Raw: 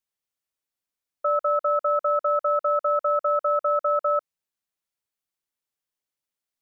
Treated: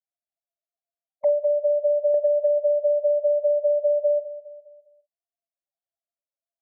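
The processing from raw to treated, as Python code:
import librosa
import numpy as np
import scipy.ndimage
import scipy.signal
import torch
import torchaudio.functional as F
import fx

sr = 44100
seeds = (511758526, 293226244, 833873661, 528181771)

y = fx.env_lowpass_down(x, sr, base_hz=400.0, full_db=-19.0)
y = fx.peak_eq(y, sr, hz=670.0, db=14.0, octaves=0.82)
y = fx.spec_topn(y, sr, count=2)
y = fx.env_flanger(y, sr, rest_ms=8.8, full_db=-28.0)
y = fx.doubler(y, sr, ms=48.0, db=-12.5)
y = fx.echo_feedback(y, sr, ms=204, feedback_pct=50, wet_db=-18)
y = fx.band_squash(y, sr, depth_pct=100, at=(2.14, 2.58))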